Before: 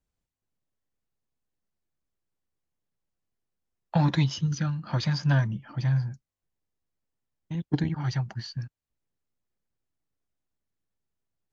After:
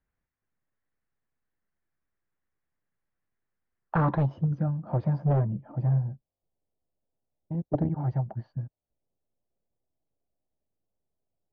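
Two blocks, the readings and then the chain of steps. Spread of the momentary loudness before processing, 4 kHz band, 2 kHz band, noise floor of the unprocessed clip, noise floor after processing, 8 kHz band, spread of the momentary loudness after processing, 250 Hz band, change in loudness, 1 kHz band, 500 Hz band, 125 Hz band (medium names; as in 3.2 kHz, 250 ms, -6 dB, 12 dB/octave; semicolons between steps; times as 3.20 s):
12 LU, under -25 dB, -7.0 dB, under -85 dBFS, under -85 dBFS, no reading, 11 LU, -1.0 dB, -1.0 dB, +2.0 dB, +5.5 dB, -0.5 dB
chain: wavefolder -19 dBFS; low-pass sweep 1.8 kHz -> 650 Hz, 3.78–4.37 s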